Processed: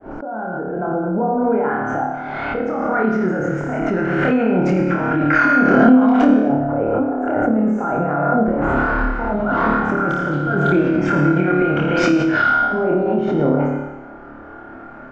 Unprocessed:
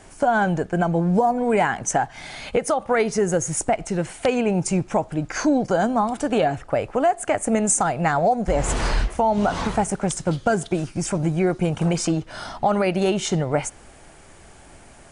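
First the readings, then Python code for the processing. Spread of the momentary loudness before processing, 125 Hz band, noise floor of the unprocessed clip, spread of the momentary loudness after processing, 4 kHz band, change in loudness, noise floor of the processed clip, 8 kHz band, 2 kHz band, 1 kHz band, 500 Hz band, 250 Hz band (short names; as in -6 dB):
5 LU, +2.5 dB, -47 dBFS, 11 LU, n/a, +4.5 dB, -37 dBFS, under -15 dB, +9.0 dB, +3.0 dB, +2.5 dB, +7.5 dB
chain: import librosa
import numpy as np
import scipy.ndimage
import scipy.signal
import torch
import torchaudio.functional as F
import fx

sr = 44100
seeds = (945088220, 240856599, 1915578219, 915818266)

p1 = fx.fade_in_head(x, sr, length_s=2.78)
p2 = scipy.signal.sosfilt(scipy.signal.butter(4, 6400.0, 'lowpass', fs=sr, output='sos'), p1)
p3 = fx.low_shelf(p2, sr, hz=400.0, db=-8.0)
p4 = fx.hum_notches(p3, sr, base_hz=60, count=6)
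p5 = fx.over_compress(p4, sr, threshold_db=-29.0, ratio=-1.0)
p6 = fx.filter_lfo_lowpass(p5, sr, shape='saw_up', hz=0.16, low_hz=740.0, high_hz=2400.0, q=1.3)
p7 = fx.small_body(p6, sr, hz=(270.0, 1400.0), ring_ms=25, db=14)
p8 = p7 + fx.room_flutter(p7, sr, wall_m=4.7, rt60_s=0.69, dry=0)
p9 = fx.rev_plate(p8, sr, seeds[0], rt60_s=0.7, hf_ratio=0.85, predelay_ms=85, drr_db=5.0)
y = fx.pre_swell(p9, sr, db_per_s=21.0)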